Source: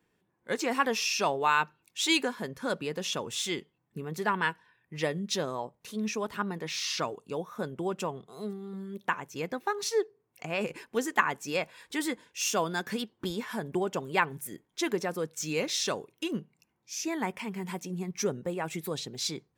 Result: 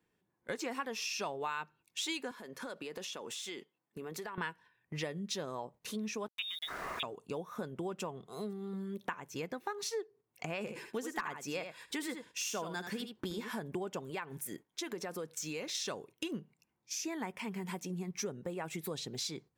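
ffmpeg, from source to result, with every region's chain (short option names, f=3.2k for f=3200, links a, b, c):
-filter_complex "[0:a]asettb=1/sr,asplit=3[a][b][c];[a]atrim=end=2.314[d];[b]atrim=start=2.31:end=4.38,asetpts=PTS-STARTPTS,afade=t=in:d=0.004:c=qsin,afade=t=out:st=2.066:d=0.004:c=qsin,highpass=270,acompressor=threshold=-41dB:ratio=8:attack=3.2:release=140:knee=1:detection=peak[e];[c]atrim=start=4.376[f];[d][e]acrossfade=d=0.004:c1=hsin:c2=qsin[g];[g][f]acrossfade=d=0.004:c1=qsin:c2=hsin,asettb=1/sr,asplit=3[h][i][j];[h]atrim=end=6.284[k];[i]atrim=start=6.28:end=7.03,asetpts=PTS-STARTPTS,afade=t=in:d=0.004:c=qsin,afade=t=out:st=0.746:d=0.004:c=qsin,agate=range=-14dB:threshold=-39dB:ratio=16:release=100:detection=peak,lowpass=f=3.3k:t=q:w=0.5098,lowpass=f=3.3k:t=q:w=0.6013,lowpass=f=3.3k:t=q:w=0.9,lowpass=f=3.3k:t=q:w=2.563,afreqshift=-3900,aeval=exprs='val(0)*gte(abs(val(0)),0.00531)':c=same[l];[j]atrim=start=7.026[m];[k][l]acrossfade=d=0.004:c1=hsin:c2=qsin[n];[n][m]acrossfade=d=0.004:c1=qsin:c2=hsin,asettb=1/sr,asplit=3[o][p][q];[o]atrim=end=10.594[r];[p]atrim=start=10.59:end=13.59,asetpts=PTS-STARTPTS,afade=t=in:d=0.004:c=qsin,afade=t=out:st=2.996:d=0.004:c=qsin,aecho=1:1:78:0.335,atrim=end_sample=132300,asoftclip=type=hard:threshold=-16dB[s];[q]atrim=start=13.586[t];[r][s]acrossfade=d=0.004:c1=hsin:c2=qsin[u];[u][t]acrossfade=d=0.004:c1=qsin:c2=hsin,asettb=1/sr,asplit=3[v][w][x];[v]atrim=end=14.104[y];[w]atrim=start=14.1:end=15.75,asetpts=PTS-STARTPTS,afade=t=in:d=0.004:c=qsin,afade=t=out:st=1.646:d=0.004:c=qsin,lowshelf=f=170:g=-6,acompressor=threshold=-37dB:ratio=2:attack=3.2:release=140:knee=1:detection=peak[z];[x]atrim=start=15.746[aa];[y][z]acrossfade=d=0.004:c1=hsin:c2=qsin[ab];[ab][aa]acrossfade=d=0.004:c1=qsin:c2=hsin,agate=range=-8dB:threshold=-50dB:ratio=16:detection=peak,acompressor=threshold=-40dB:ratio=4,volume=2.5dB"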